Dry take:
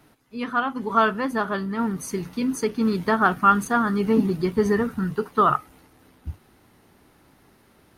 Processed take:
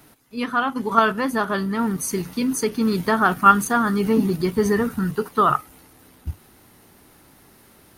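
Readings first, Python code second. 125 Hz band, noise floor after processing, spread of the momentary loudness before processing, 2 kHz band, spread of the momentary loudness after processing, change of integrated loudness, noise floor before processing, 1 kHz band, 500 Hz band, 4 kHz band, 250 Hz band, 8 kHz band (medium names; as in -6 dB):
+2.0 dB, -53 dBFS, 11 LU, +2.0 dB, 11 LU, +2.0 dB, -58 dBFS, +2.5 dB, +1.5 dB, +4.5 dB, +2.0 dB, +8.0 dB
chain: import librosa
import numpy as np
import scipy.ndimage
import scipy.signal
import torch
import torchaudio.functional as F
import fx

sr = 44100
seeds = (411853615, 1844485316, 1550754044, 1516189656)

p1 = fx.level_steps(x, sr, step_db=15)
p2 = x + (p1 * librosa.db_to_amplitude(-0.5))
p3 = fx.high_shelf(p2, sr, hz=6000.0, db=10.5)
y = p3 * librosa.db_to_amplitude(-1.0)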